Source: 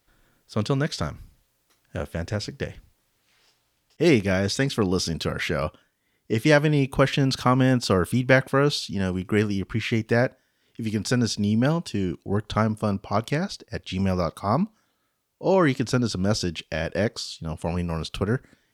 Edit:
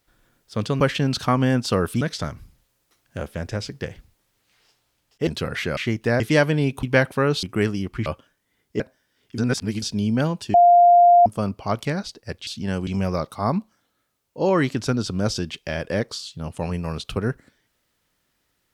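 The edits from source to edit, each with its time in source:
0:04.06–0:05.11: remove
0:05.61–0:06.35: swap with 0:09.82–0:10.25
0:06.98–0:08.19: move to 0:00.80
0:08.79–0:09.19: move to 0:13.92
0:10.83–0:11.27: reverse
0:11.99–0:12.71: beep over 700 Hz −9 dBFS

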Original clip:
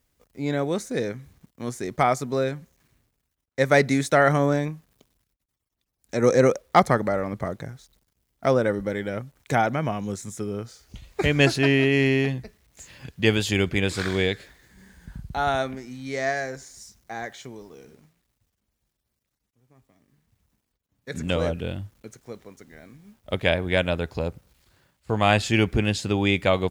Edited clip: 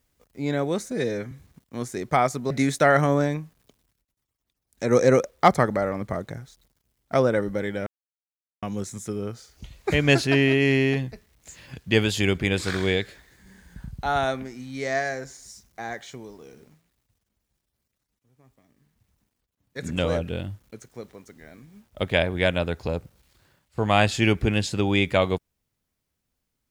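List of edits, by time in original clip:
0:00.91–0:01.18: time-stretch 1.5×
0:02.37–0:03.82: remove
0:09.18–0:09.94: silence

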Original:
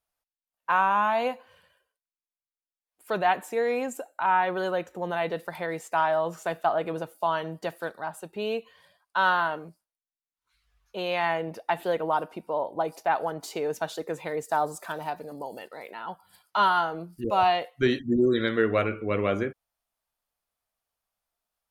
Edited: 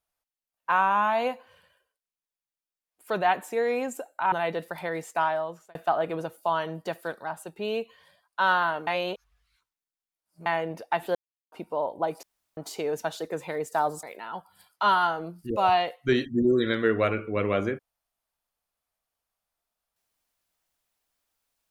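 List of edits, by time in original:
0:04.32–0:05.09: remove
0:05.94–0:06.52: fade out
0:09.64–0:11.23: reverse
0:11.92–0:12.29: silence
0:13.00–0:13.34: fill with room tone
0:14.80–0:15.77: remove

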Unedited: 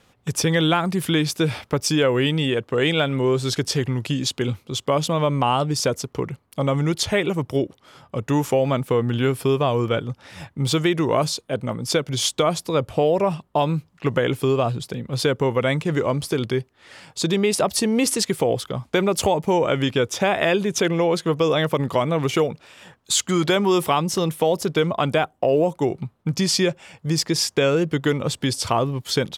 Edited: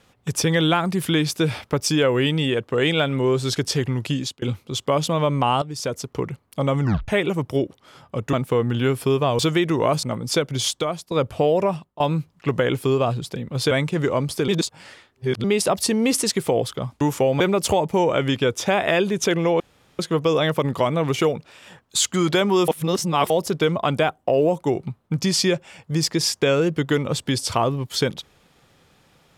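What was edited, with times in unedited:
0:04.16–0:04.42: fade out
0:05.62–0:06.18: fade in, from −13 dB
0:06.82: tape stop 0.26 s
0:08.33–0:08.72: move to 0:18.94
0:09.78–0:10.68: remove
0:11.32–0:11.61: remove
0:12.16–0:12.69: fade out, to −14 dB
0:13.22–0:13.58: fade out, to −21.5 dB
0:15.29–0:15.64: remove
0:16.41–0:17.37: reverse
0:21.14: splice in room tone 0.39 s
0:23.83–0:24.45: reverse

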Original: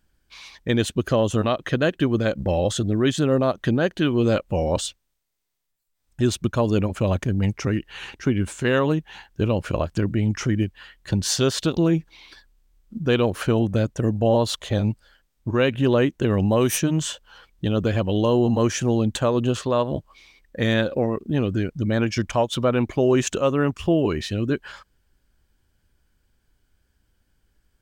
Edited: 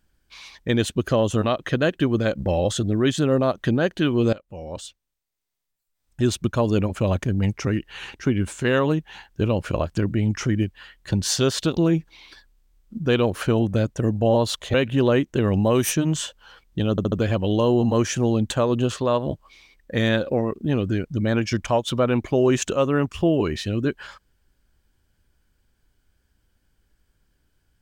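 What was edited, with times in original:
0:04.33–0:06.29: fade in, from −20.5 dB
0:14.74–0:15.60: remove
0:17.77: stutter 0.07 s, 4 plays

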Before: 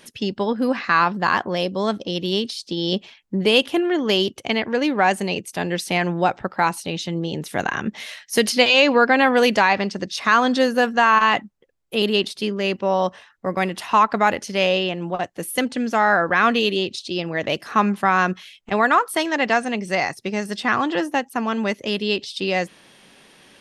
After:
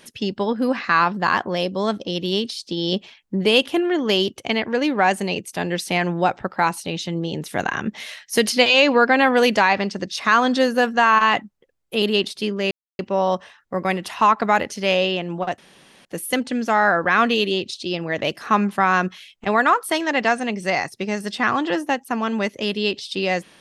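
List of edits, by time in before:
0:12.71: splice in silence 0.28 s
0:15.30: splice in room tone 0.47 s

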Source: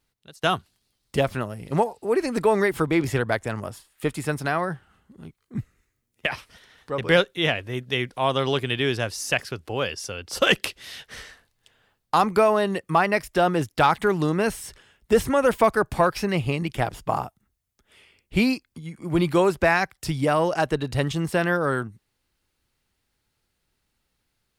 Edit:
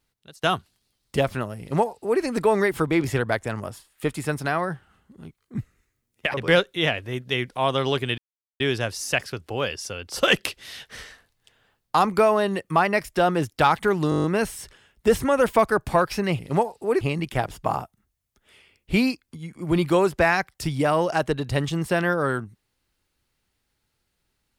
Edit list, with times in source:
0:01.60–0:02.22: duplicate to 0:16.44
0:06.34–0:06.95: remove
0:08.79: splice in silence 0.42 s
0:14.29: stutter 0.02 s, 8 plays

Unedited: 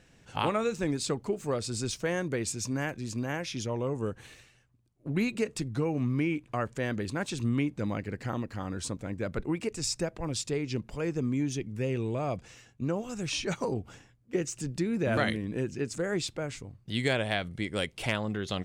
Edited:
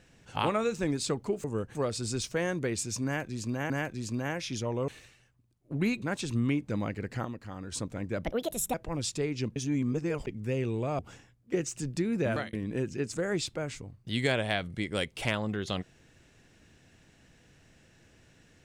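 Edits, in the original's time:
0:02.74–0:03.39: repeat, 2 plays
0:03.92–0:04.23: move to 0:01.44
0:05.37–0:07.11: remove
0:08.34–0:08.81: clip gain −5.5 dB
0:09.33–0:10.06: play speed 146%
0:10.88–0:11.59: reverse
0:12.31–0:13.80: remove
0:15.06–0:15.34: fade out

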